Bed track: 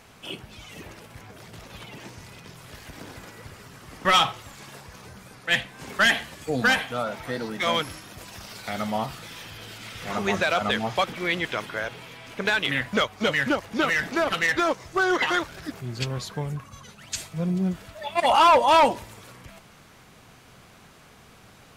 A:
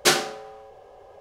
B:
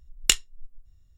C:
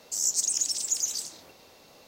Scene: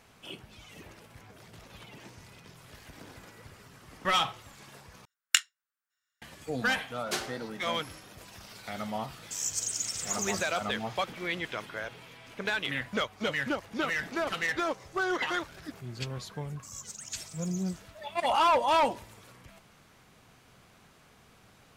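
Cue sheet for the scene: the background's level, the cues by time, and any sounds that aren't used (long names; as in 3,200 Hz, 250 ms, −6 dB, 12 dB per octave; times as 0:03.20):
bed track −7.5 dB
0:05.05: overwrite with B −6 dB + high-pass with resonance 1,500 Hz, resonance Q 4.5
0:07.06: mix in A −14.5 dB
0:09.19: mix in C −6.5 dB + single-tap delay 186 ms −9 dB
0:14.22: mix in A −13.5 dB + downward compressor, threshold −36 dBFS
0:16.51: mix in C −17.5 dB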